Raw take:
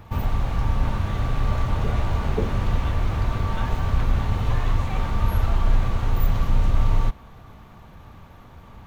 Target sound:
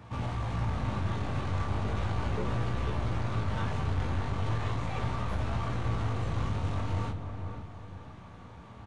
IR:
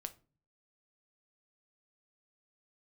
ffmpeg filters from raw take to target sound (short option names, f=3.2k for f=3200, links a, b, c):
-filter_complex "[0:a]highpass=f=70:w=0.5412,highpass=f=70:w=1.3066,aeval=exprs='(tanh(17.8*val(0)+0.2)-tanh(0.2))/17.8':c=same,flanger=delay=16:depth=5.2:speed=0.37,asplit=2[a][b];[1:a]atrim=start_sample=2205,adelay=35[c];[b][c]afir=irnorm=-1:irlink=0,volume=-6.5dB[d];[a][d]amix=inputs=2:normalize=0,aresample=22050,aresample=44100,asplit=2[e][f];[f]adelay=495,lowpass=f=1.1k:p=1,volume=-6dB,asplit=2[g][h];[h]adelay=495,lowpass=f=1.1k:p=1,volume=0.4,asplit=2[i][j];[j]adelay=495,lowpass=f=1.1k:p=1,volume=0.4,asplit=2[k][l];[l]adelay=495,lowpass=f=1.1k:p=1,volume=0.4,asplit=2[m][n];[n]adelay=495,lowpass=f=1.1k:p=1,volume=0.4[o];[e][g][i][k][m][o]amix=inputs=6:normalize=0"